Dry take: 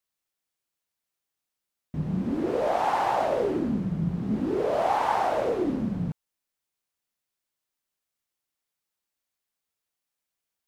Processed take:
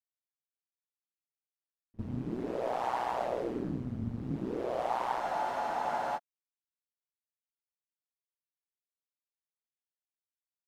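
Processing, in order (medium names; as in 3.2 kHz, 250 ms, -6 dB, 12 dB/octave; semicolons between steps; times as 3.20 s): ring modulator 61 Hz; gate with hold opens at -23 dBFS; spectral freeze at 5.22 s, 0.94 s; trim -5.5 dB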